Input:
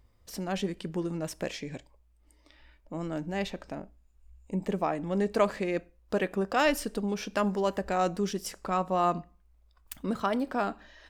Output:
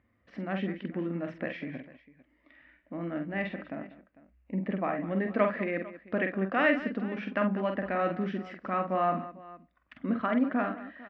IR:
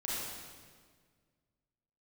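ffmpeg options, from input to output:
-af "highpass=130,equalizer=f=160:t=q:w=4:g=-4,equalizer=f=250:t=q:w=4:g=6,equalizer=f=420:t=q:w=4:g=-8,equalizer=f=890:t=q:w=4:g=-9,equalizer=f=1900:t=q:w=4:g=6,lowpass=f=2500:w=0.5412,lowpass=f=2500:w=1.3066,aecho=1:1:47|194|449:0.501|0.168|0.106"

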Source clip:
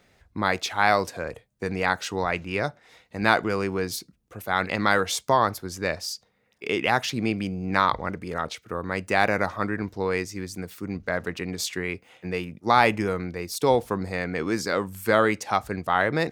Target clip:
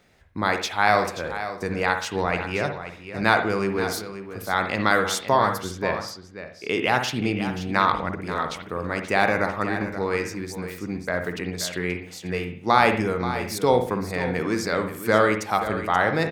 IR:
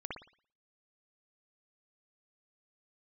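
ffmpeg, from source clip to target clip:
-filter_complex "[0:a]asettb=1/sr,asplit=3[s0][s1][s2];[s0]atrim=end=5.654[s3];[s1]atrim=start=5.65:end=6.68,asetpts=PTS-STARTPTS,afade=t=in:d=0.004:c=qsin,afade=t=out:st=1.026:d=0.004:c=qsin,aemphasis=mode=reproduction:type=50fm[s4];[s2]atrim=start=6.676[s5];[s3][s4]acrossfade=d=0.004:c1=hsin:c2=qsin[s6];[s6][s5]acrossfade=d=0.004:c1=qsin:c2=hsin,aecho=1:1:530:0.266,asplit=2[s7][s8];[1:a]atrim=start_sample=2205[s9];[s8][s9]afir=irnorm=-1:irlink=0,volume=0.75[s10];[s7][s10]amix=inputs=2:normalize=0,volume=0.75"

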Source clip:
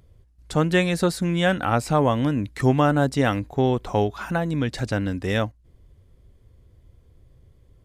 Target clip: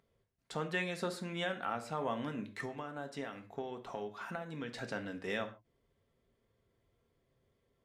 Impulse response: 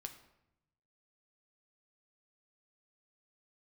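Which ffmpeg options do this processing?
-filter_complex "[0:a]highpass=f=580:p=1,highshelf=f=5100:g=-9.5,alimiter=limit=0.158:level=0:latency=1:release=355,asettb=1/sr,asplit=3[s0][s1][s2];[s0]atrim=end=2.534[s3];[s1]atrim=start=2.53:end=4.78,asetpts=PTS-STARTPTS,afade=t=in:d=0.004:c=qsin,afade=t=out:st=2.246:d=0.004:c=qsin,acompressor=threshold=0.0316:ratio=6[s4];[s2]atrim=start=4.776[s5];[s3][s4]acrossfade=d=0.004:c1=hsin:c2=qsin[s6];[s6][s5]acrossfade=d=0.004:c1=qsin:c2=hsin[s7];[1:a]atrim=start_sample=2205,afade=t=out:st=0.31:d=0.01,atrim=end_sample=14112,asetrate=74970,aresample=44100[s8];[s7][s8]afir=irnorm=-1:irlink=0,volume=1.19"

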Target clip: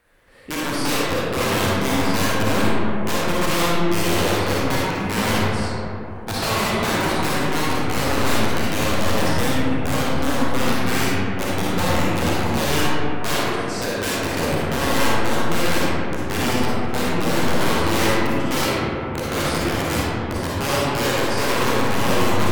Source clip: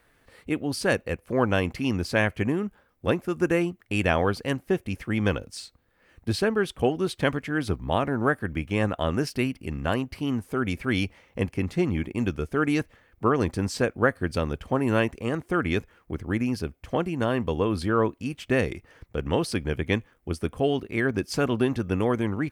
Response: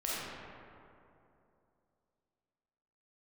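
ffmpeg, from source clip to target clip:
-filter_complex "[0:a]asettb=1/sr,asplit=3[s0][s1][s2];[s0]atrim=end=13.344[s3];[s1]atrim=start=13.34:end=13.97,asetpts=PTS-STARTPTS,afade=t=in:d=0.004:c=qsin,afade=t=out:st=0.626:d=0.004:c=qsin,highpass=f=710:p=1[s4];[s2]atrim=start=13.966[s5];[s3][s4]acrossfade=d=0.004:c1=hsin:c2=qsin[s6];[s6][s5]acrossfade=d=0.004:c1=qsin:c2=hsin,aeval=exprs='(mod(9.44*val(0)+1,2)-1)/9.44':c=same[s7];[1:a]atrim=start_sample=2205,asetrate=37044,aresample=44100[s8];[s7][s8]afir=irnorm=-1:irlink=0"

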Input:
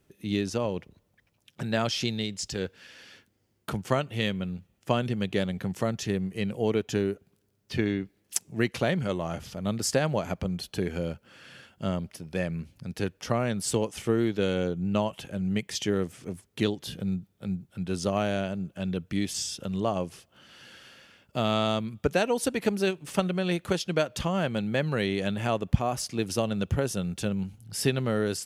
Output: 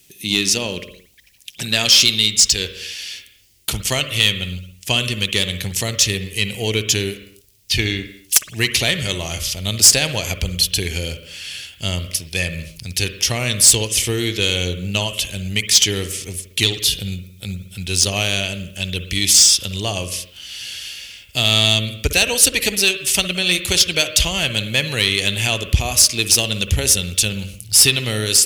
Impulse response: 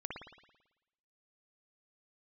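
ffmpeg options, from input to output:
-filter_complex "[0:a]asubboost=boost=12:cutoff=53,aexciter=amount=7.8:drive=3.7:freq=2100,acontrast=75,asplit=2[s0][s1];[s1]asuperstop=centerf=810:order=12:qfactor=2.1[s2];[1:a]atrim=start_sample=2205,afade=t=out:st=0.33:d=0.01,atrim=end_sample=14994[s3];[s2][s3]afir=irnorm=-1:irlink=0,volume=0.501[s4];[s0][s4]amix=inputs=2:normalize=0,volume=0.631"

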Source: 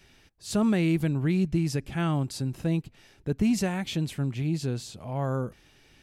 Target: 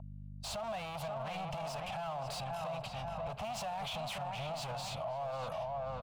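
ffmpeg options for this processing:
-filter_complex "[0:a]agate=range=0.00562:threshold=0.00316:ratio=16:detection=peak,dynaudnorm=f=160:g=3:m=2.82,aeval=exprs='val(0)+0.00891*(sin(2*PI*50*n/s)+sin(2*PI*2*50*n/s)/2+sin(2*PI*3*50*n/s)/3+sin(2*PI*4*50*n/s)/4+sin(2*PI*5*50*n/s)/5)':c=same,asplit=2[s0][s1];[s1]highpass=f=720:p=1,volume=22.4,asoftclip=type=tanh:threshold=0.178[s2];[s0][s2]amix=inputs=2:normalize=0,lowpass=f=4500:p=1,volume=0.501,equalizer=f=2500:t=o:w=0.77:g=2.5,acrossover=split=510|1500[s3][s4][s5];[s3]acompressor=threshold=0.0224:ratio=6[s6];[s6][s4][s5]amix=inputs=3:normalize=0,firequalizer=gain_entry='entry(140,0);entry(340,-26);entry(650,6);entry(1800,-18);entry(2800,-9);entry(5500,-13)':delay=0.05:min_phase=1,asplit=2[s7][s8];[s8]adelay=535,lowpass=f=2100:p=1,volume=0.596,asplit=2[s9][s10];[s10]adelay=535,lowpass=f=2100:p=1,volume=0.44,asplit=2[s11][s12];[s12]adelay=535,lowpass=f=2100:p=1,volume=0.44,asplit=2[s13][s14];[s14]adelay=535,lowpass=f=2100:p=1,volume=0.44,asplit=2[s15][s16];[s16]adelay=535,lowpass=f=2100:p=1,volume=0.44[s17];[s9][s11][s13][s15][s17]amix=inputs=5:normalize=0[s18];[s7][s18]amix=inputs=2:normalize=0,alimiter=level_in=1.33:limit=0.0631:level=0:latency=1:release=37,volume=0.75,volume=0.531"

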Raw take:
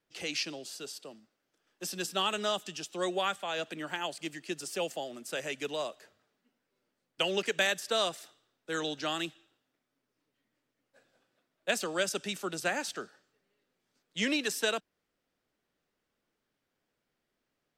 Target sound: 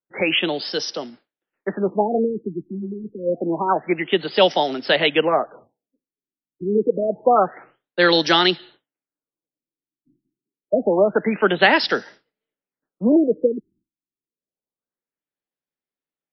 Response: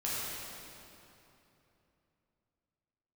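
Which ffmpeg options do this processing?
-filter_complex "[0:a]acrossover=split=100|7500[s0][s1][s2];[s1]acontrast=69[s3];[s0][s3][s2]amix=inputs=3:normalize=0,agate=range=0.0224:threshold=0.002:ratio=3:detection=peak,asplit=2[s4][s5];[s5]alimiter=limit=0.15:level=0:latency=1,volume=1.26[s6];[s4][s6]amix=inputs=2:normalize=0,bandreject=f=620:w=17,asetrate=48000,aresample=44100,afftfilt=real='re*lt(b*sr/1024,370*pow(6000/370,0.5+0.5*sin(2*PI*0.27*pts/sr)))':imag='im*lt(b*sr/1024,370*pow(6000/370,0.5+0.5*sin(2*PI*0.27*pts/sr)))':win_size=1024:overlap=0.75,volume=1.88"

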